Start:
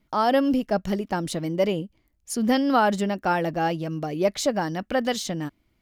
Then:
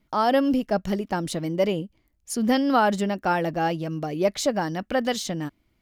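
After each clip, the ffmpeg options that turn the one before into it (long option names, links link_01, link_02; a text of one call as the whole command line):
ffmpeg -i in.wav -af anull out.wav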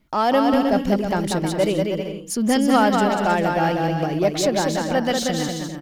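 ffmpeg -i in.wav -filter_complex "[0:a]asplit=2[link_01][link_02];[link_02]asoftclip=type=tanh:threshold=-25dB,volume=-4dB[link_03];[link_01][link_03]amix=inputs=2:normalize=0,aecho=1:1:190|313.5|393.8|446|479.9:0.631|0.398|0.251|0.158|0.1" out.wav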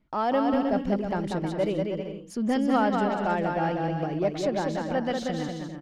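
ffmpeg -i in.wav -af "aemphasis=mode=reproduction:type=75fm,volume=-7dB" out.wav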